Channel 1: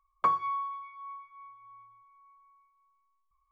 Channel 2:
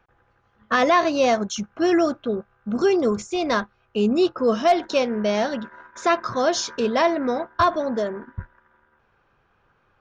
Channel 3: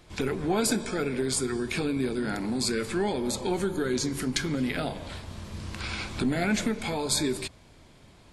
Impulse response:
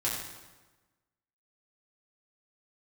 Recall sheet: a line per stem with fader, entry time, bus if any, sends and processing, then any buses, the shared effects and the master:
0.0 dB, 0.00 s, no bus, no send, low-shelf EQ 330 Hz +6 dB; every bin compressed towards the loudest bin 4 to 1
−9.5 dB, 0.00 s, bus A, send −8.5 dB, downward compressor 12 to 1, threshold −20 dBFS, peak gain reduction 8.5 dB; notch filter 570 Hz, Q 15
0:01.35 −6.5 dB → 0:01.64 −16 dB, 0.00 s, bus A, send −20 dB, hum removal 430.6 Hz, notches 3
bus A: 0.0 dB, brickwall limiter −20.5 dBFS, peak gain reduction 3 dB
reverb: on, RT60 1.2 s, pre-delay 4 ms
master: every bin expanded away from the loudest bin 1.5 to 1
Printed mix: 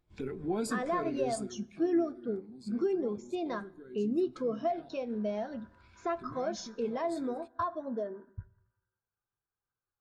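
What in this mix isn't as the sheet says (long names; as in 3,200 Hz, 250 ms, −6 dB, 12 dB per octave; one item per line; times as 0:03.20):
stem 1: muted
reverb return −8.5 dB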